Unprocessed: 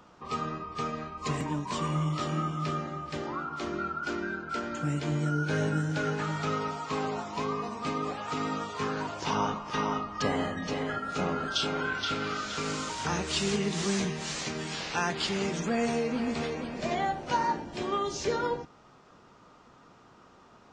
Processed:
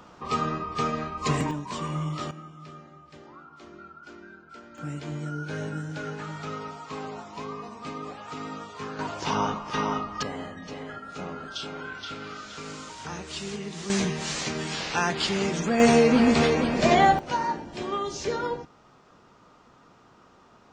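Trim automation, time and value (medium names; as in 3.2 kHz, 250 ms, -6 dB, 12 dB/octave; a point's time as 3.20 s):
+6 dB
from 1.51 s -1 dB
from 2.31 s -13 dB
from 4.78 s -4.5 dB
from 8.99 s +2.5 dB
from 10.23 s -6 dB
from 13.90 s +4 dB
from 15.80 s +11.5 dB
from 17.19 s +0.5 dB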